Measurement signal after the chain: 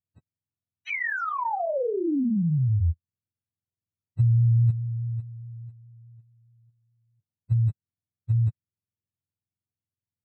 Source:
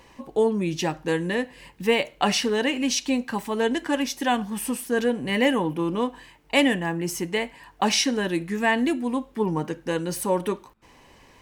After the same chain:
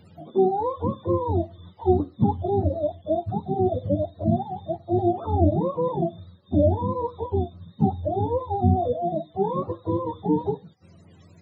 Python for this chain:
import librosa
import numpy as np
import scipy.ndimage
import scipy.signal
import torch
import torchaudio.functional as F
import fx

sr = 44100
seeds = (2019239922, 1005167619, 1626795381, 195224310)

y = fx.octave_mirror(x, sr, pivot_hz=410.0)
y = fx.vibrato(y, sr, rate_hz=4.8, depth_cents=22.0)
y = F.gain(torch.from_numpy(y), 2.0).numpy()